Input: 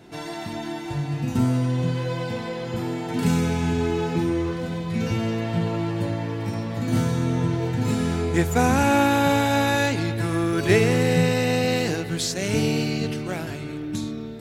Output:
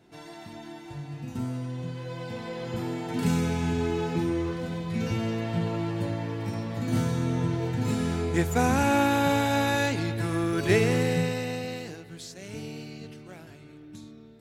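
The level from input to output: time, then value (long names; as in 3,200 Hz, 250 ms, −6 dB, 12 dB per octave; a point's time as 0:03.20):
0:01.96 −11 dB
0:02.65 −4 dB
0:10.98 −4 dB
0:12.00 −16 dB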